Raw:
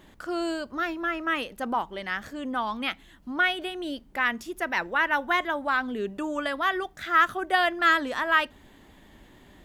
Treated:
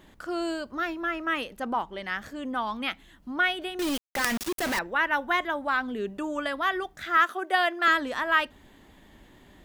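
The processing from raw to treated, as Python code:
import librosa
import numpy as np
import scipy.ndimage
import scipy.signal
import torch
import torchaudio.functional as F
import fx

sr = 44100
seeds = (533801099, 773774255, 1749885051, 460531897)

y = fx.high_shelf(x, sr, hz=10000.0, db=-6.0, at=(1.58, 2.04))
y = fx.quant_companded(y, sr, bits=2, at=(3.79, 4.79))
y = fx.highpass(y, sr, hz=300.0, slope=24, at=(7.17, 7.88))
y = F.gain(torch.from_numpy(y), -1.0).numpy()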